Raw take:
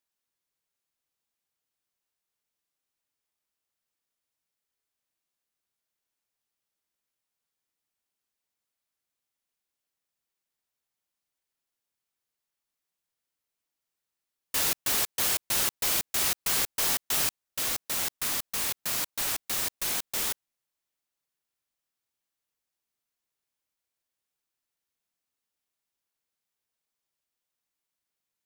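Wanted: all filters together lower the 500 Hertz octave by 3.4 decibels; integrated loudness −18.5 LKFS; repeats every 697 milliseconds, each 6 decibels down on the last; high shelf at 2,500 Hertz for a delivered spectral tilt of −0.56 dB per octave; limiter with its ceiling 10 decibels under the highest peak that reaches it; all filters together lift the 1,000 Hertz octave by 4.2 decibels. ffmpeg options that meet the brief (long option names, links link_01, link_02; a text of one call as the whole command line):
ffmpeg -i in.wav -af "equalizer=frequency=500:width_type=o:gain=-7,equalizer=frequency=1000:width_type=o:gain=8,highshelf=frequency=2500:gain=-5,alimiter=level_in=2.5dB:limit=-24dB:level=0:latency=1,volume=-2.5dB,aecho=1:1:697|1394|2091|2788|3485|4182:0.501|0.251|0.125|0.0626|0.0313|0.0157,volume=17.5dB" out.wav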